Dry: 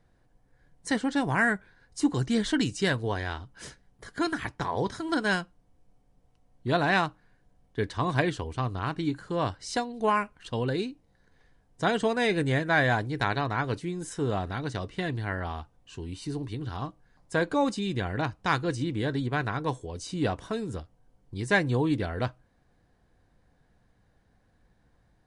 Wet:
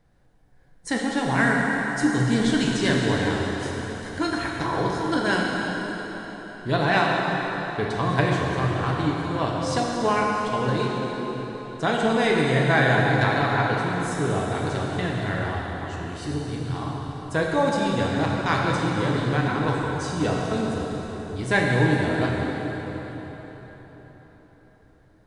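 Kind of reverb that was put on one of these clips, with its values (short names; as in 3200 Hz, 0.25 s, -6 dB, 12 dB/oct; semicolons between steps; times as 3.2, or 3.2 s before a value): plate-style reverb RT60 4.6 s, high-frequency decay 0.8×, DRR -3 dB; gain +1 dB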